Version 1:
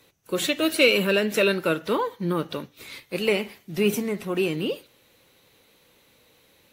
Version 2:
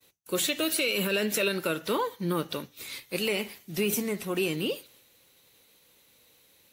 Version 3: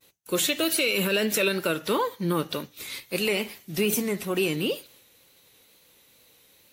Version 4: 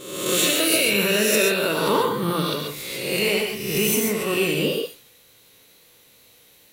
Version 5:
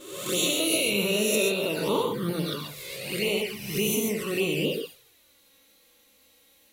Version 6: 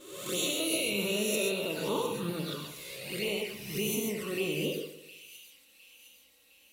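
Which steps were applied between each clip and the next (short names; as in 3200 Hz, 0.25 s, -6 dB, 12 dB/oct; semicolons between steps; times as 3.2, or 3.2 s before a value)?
expander -55 dBFS; high shelf 3900 Hz +10.5 dB; limiter -13.5 dBFS, peak gain reduction 10 dB; gain -3.5 dB
wow and flutter 36 cents; gain +3 dB
spectral swells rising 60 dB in 1.00 s; non-linear reverb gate 0.16 s rising, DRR 2.5 dB
envelope flanger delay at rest 3.9 ms, full sweep at -17.5 dBFS; gain -3.5 dB
split-band echo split 2500 Hz, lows 98 ms, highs 0.709 s, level -12.5 dB; gain -6 dB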